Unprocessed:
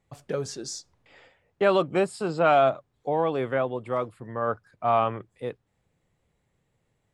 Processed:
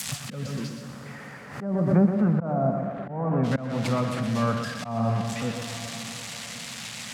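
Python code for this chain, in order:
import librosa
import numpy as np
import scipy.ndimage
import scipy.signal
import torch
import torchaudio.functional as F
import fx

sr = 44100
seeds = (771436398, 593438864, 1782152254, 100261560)

y = x + 0.5 * 10.0 ** (-17.5 / 20.0) * np.diff(np.sign(x), prepend=np.sign(x[:1]))
y = fx.lowpass(y, sr, hz=1600.0, slope=24, at=(0.76, 3.43), fade=0.02)
y = fx.env_lowpass_down(y, sr, base_hz=550.0, full_db=-16.5)
y = fx.echo_feedback(y, sr, ms=122, feedback_pct=40, wet_db=-7.5)
y = fx.rev_plate(y, sr, seeds[0], rt60_s=5.0, hf_ratio=1.0, predelay_ms=0, drr_db=8.5)
y = fx.auto_swell(y, sr, attack_ms=261.0)
y = scipy.signal.sosfilt(scipy.signal.butter(2, 76.0, 'highpass', fs=sr, output='sos'), y)
y = fx.low_shelf_res(y, sr, hz=280.0, db=8.5, q=3.0)
y = fx.pre_swell(y, sr, db_per_s=76.0)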